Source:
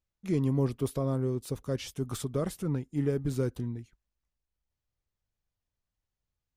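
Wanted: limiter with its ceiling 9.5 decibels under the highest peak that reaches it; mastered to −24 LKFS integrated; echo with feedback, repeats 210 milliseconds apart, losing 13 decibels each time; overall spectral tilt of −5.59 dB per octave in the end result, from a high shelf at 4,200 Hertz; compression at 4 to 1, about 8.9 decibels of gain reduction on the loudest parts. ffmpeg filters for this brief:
ffmpeg -i in.wav -af "highshelf=frequency=4200:gain=3,acompressor=threshold=-34dB:ratio=4,alimiter=level_in=9.5dB:limit=-24dB:level=0:latency=1,volume=-9.5dB,aecho=1:1:210|420|630:0.224|0.0493|0.0108,volume=19dB" out.wav

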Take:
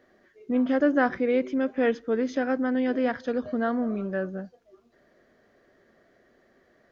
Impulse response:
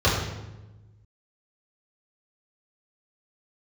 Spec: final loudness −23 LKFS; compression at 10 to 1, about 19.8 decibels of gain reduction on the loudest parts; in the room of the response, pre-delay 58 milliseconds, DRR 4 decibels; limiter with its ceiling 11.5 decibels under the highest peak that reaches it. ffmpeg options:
-filter_complex "[0:a]acompressor=threshold=-38dB:ratio=10,alimiter=level_in=16.5dB:limit=-24dB:level=0:latency=1,volume=-16.5dB,asplit=2[link_01][link_02];[1:a]atrim=start_sample=2205,adelay=58[link_03];[link_02][link_03]afir=irnorm=-1:irlink=0,volume=-22.5dB[link_04];[link_01][link_04]amix=inputs=2:normalize=0,volume=23.5dB"

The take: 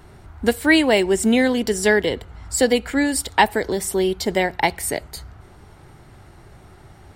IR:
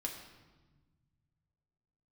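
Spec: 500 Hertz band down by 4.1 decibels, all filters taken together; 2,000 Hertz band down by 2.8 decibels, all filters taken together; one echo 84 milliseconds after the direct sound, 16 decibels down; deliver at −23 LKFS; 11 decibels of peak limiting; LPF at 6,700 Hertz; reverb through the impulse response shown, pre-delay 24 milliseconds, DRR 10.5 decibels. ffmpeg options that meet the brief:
-filter_complex "[0:a]lowpass=6700,equalizer=frequency=500:width_type=o:gain=-5,equalizer=frequency=2000:width_type=o:gain=-3,alimiter=limit=-14.5dB:level=0:latency=1,aecho=1:1:84:0.158,asplit=2[link_01][link_02];[1:a]atrim=start_sample=2205,adelay=24[link_03];[link_02][link_03]afir=irnorm=-1:irlink=0,volume=-10.5dB[link_04];[link_01][link_04]amix=inputs=2:normalize=0,volume=2dB"

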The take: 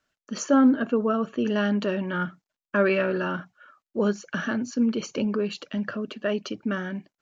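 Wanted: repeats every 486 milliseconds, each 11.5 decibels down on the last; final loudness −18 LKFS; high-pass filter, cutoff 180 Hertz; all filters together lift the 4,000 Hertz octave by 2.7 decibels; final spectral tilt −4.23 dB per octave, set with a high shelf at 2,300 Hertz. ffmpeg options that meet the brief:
ffmpeg -i in.wav -af "highpass=180,highshelf=frequency=2300:gain=-3,equalizer=frequency=4000:width_type=o:gain=7,aecho=1:1:486|972|1458:0.266|0.0718|0.0194,volume=8.5dB" out.wav

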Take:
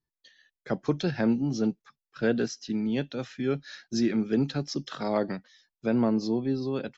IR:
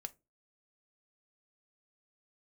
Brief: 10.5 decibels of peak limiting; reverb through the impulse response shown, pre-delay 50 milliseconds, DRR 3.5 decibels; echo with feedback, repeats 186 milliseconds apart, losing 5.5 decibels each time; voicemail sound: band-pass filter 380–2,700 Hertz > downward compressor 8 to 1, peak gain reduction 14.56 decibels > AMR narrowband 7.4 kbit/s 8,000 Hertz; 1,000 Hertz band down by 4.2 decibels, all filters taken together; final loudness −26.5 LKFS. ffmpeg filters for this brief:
-filter_complex "[0:a]equalizer=frequency=1000:width_type=o:gain=-5.5,alimiter=level_in=0.5dB:limit=-24dB:level=0:latency=1,volume=-0.5dB,aecho=1:1:186|372|558|744|930|1116|1302:0.531|0.281|0.149|0.079|0.0419|0.0222|0.0118,asplit=2[link_01][link_02];[1:a]atrim=start_sample=2205,adelay=50[link_03];[link_02][link_03]afir=irnorm=-1:irlink=0,volume=0.5dB[link_04];[link_01][link_04]amix=inputs=2:normalize=0,highpass=380,lowpass=2700,acompressor=threshold=-45dB:ratio=8,volume=23.5dB" -ar 8000 -c:a libopencore_amrnb -b:a 7400

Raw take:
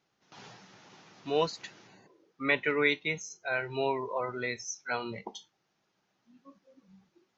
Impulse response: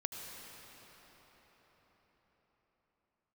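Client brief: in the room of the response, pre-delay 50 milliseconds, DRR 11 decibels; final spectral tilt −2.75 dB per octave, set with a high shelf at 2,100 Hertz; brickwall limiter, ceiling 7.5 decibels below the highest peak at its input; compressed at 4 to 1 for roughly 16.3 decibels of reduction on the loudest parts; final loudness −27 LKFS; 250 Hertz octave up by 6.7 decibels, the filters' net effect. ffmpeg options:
-filter_complex "[0:a]equalizer=frequency=250:width_type=o:gain=8,highshelf=frequency=2100:gain=8,acompressor=threshold=-37dB:ratio=4,alimiter=level_in=6dB:limit=-24dB:level=0:latency=1,volume=-6dB,asplit=2[link_01][link_02];[1:a]atrim=start_sample=2205,adelay=50[link_03];[link_02][link_03]afir=irnorm=-1:irlink=0,volume=-11.5dB[link_04];[link_01][link_04]amix=inputs=2:normalize=0,volume=15dB"

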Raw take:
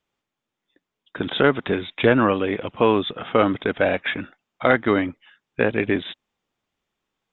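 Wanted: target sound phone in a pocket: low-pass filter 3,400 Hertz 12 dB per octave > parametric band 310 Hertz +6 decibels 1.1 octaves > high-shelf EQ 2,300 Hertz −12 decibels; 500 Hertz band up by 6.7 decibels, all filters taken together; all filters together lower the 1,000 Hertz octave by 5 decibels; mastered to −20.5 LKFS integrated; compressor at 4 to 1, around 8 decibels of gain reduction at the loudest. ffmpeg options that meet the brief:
ffmpeg -i in.wav -af "equalizer=frequency=500:width_type=o:gain=6.5,equalizer=frequency=1000:width_type=o:gain=-7,acompressor=threshold=-19dB:ratio=4,lowpass=3400,equalizer=frequency=310:width_type=o:width=1.1:gain=6,highshelf=frequency=2300:gain=-12,volume=2dB" out.wav

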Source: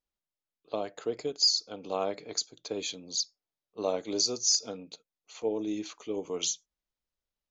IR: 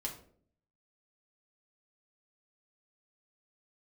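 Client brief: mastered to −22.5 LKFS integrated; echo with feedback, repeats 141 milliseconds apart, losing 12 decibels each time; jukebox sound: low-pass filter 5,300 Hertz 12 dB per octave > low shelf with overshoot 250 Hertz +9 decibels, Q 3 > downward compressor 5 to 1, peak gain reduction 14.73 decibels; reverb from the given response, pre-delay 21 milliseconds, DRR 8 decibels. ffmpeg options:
-filter_complex "[0:a]aecho=1:1:141|282|423:0.251|0.0628|0.0157,asplit=2[link_01][link_02];[1:a]atrim=start_sample=2205,adelay=21[link_03];[link_02][link_03]afir=irnorm=-1:irlink=0,volume=-8dB[link_04];[link_01][link_04]amix=inputs=2:normalize=0,lowpass=5300,lowshelf=frequency=250:width_type=q:width=3:gain=9,acompressor=threshold=-37dB:ratio=5,volume=18dB"

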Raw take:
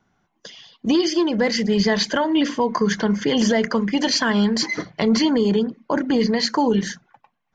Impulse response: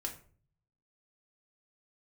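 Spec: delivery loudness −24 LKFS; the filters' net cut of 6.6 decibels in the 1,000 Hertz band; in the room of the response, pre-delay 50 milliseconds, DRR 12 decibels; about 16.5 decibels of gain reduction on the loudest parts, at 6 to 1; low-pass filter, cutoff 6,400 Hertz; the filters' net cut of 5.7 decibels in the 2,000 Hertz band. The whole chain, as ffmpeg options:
-filter_complex "[0:a]lowpass=6400,equalizer=frequency=1000:width_type=o:gain=-7,equalizer=frequency=2000:width_type=o:gain=-4.5,acompressor=threshold=-34dB:ratio=6,asplit=2[link_01][link_02];[1:a]atrim=start_sample=2205,adelay=50[link_03];[link_02][link_03]afir=irnorm=-1:irlink=0,volume=-11.5dB[link_04];[link_01][link_04]amix=inputs=2:normalize=0,volume=12dB"

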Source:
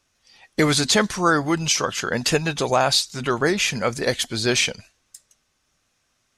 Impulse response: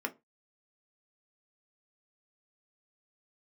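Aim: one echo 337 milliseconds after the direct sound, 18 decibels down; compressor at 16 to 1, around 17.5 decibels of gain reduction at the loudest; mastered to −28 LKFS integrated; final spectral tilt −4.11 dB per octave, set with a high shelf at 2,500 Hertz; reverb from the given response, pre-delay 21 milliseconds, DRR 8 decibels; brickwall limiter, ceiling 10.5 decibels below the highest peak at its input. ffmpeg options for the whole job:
-filter_complex "[0:a]highshelf=frequency=2500:gain=-7.5,acompressor=threshold=-32dB:ratio=16,alimiter=level_in=7dB:limit=-24dB:level=0:latency=1,volume=-7dB,aecho=1:1:337:0.126,asplit=2[link_01][link_02];[1:a]atrim=start_sample=2205,adelay=21[link_03];[link_02][link_03]afir=irnorm=-1:irlink=0,volume=-11.5dB[link_04];[link_01][link_04]amix=inputs=2:normalize=0,volume=12dB"

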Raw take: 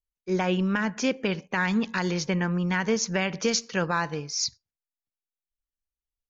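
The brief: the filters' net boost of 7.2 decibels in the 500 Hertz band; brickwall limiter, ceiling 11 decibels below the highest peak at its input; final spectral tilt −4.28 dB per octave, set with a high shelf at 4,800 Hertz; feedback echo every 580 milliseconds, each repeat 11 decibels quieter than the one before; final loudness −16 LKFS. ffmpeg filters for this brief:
ffmpeg -i in.wav -af "equalizer=frequency=500:width_type=o:gain=8.5,highshelf=frequency=4800:gain=4.5,alimiter=limit=-19dB:level=0:latency=1,aecho=1:1:580|1160|1740:0.282|0.0789|0.0221,volume=12.5dB" out.wav

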